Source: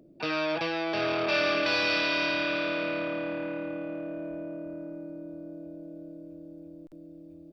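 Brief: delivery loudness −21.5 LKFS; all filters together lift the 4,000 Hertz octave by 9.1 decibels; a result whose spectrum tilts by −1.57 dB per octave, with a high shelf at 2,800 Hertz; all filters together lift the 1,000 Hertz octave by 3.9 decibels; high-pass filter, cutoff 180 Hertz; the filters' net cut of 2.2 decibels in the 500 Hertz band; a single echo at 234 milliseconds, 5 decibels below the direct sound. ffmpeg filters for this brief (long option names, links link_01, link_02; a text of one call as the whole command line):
ffmpeg -i in.wav -af "highpass=180,equalizer=frequency=500:width_type=o:gain=-5,equalizer=frequency=1000:width_type=o:gain=4.5,highshelf=frequency=2800:gain=7.5,equalizer=frequency=4000:width_type=o:gain=5,aecho=1:1:234:0.562" out.wav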